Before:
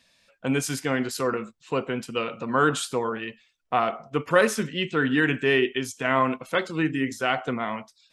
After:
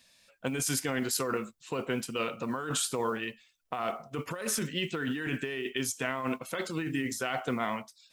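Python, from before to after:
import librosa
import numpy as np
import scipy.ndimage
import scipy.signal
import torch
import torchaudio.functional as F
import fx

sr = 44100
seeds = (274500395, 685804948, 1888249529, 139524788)

y = fx.high_shelf(x, sr, hz=6400.0, db=11.0)
y = fx.over_compress(y, sr, threshold_db=-26.0, ratio=-1.0)
y = fx.mod_noise(y, sr, seeds[0], snr_db=32)
y = F.gain(torch.from_numpy(y), -5.5).numpy()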